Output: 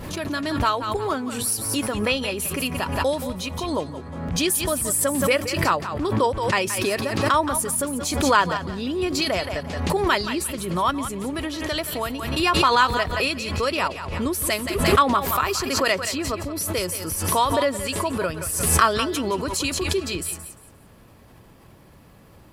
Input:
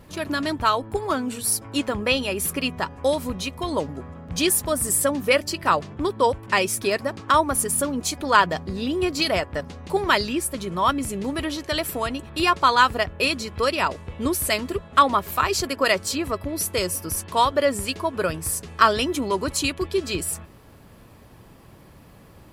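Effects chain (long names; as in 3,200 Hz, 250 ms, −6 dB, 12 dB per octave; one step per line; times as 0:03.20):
feedback echo with a high-pass in the loop 174 ms, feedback 25%, high-pass 550 Hz, level −10 dB
background raised ahead of every attack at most 44 dB per second
level −2 dB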